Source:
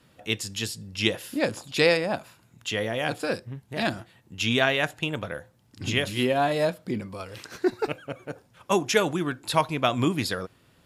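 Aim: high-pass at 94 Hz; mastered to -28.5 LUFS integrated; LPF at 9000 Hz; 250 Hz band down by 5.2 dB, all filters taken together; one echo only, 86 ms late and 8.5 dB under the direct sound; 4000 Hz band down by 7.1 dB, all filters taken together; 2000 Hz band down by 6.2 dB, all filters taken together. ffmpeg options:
-af "highpass=94,lowpass=9k,equalizer=f=250:t=o:g=-7,equalizer=f=2k:t=o:g=-6,equalizer=f=4k:t=o:g=-7,aecho=1:1:86:0.376,volume=1dB"

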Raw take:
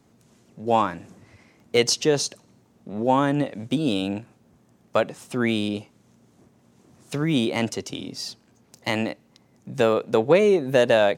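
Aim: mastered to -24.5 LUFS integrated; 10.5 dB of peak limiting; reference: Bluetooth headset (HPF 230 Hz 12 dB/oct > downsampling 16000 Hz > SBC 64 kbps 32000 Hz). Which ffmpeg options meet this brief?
-af "alimiter=limit=-15.5dB:level=0:latency=1,highpass=230,aresample=16000,aresample=44100,volume=4dB" -ar 32000 -c:a sbc -b:a 64k

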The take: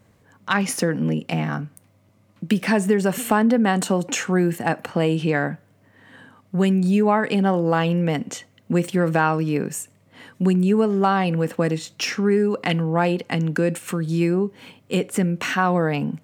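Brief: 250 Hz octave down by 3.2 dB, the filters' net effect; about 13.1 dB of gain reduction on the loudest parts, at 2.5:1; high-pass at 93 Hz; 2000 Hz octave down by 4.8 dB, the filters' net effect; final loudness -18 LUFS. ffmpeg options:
-af "highpass=93,equalizer=f=250:t=o:g=-4.5,equalizer=f=2k:t=o:g=-6.5,acompressor=threshold=-37dB:ratio=2.5,volume=17.5dB"

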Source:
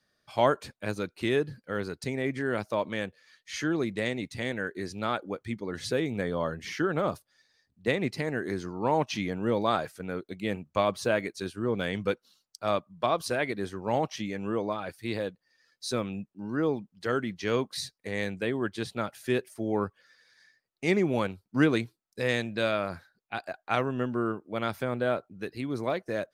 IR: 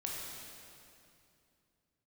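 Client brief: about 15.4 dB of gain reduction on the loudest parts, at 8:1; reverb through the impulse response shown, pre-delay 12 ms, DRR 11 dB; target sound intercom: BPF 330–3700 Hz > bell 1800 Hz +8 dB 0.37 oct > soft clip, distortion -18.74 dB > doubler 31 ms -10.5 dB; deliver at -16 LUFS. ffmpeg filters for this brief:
-filter_complex "[0:a]acompressor=threshold=-34dB:ratio=8,asplit=2[a][b];[1:a]atrim=start_sample=2205,adelay=12[c];[b][c]afir=irnorm=-1:irlink=0,volume=-12.5dB[d];[a][d]amix=inputs=2:normalize=0,highpass=330,lowpass=3.7k,equalizer=f=1.8k:t=o:w=0.37:g=8,asoftclip=threshold=-27.5dB,asplit=2[e][f];[f]adelay=31,volume=-10.5dB[g];[e][g]amix=inputs=2:normalize=0,volume=25dB"

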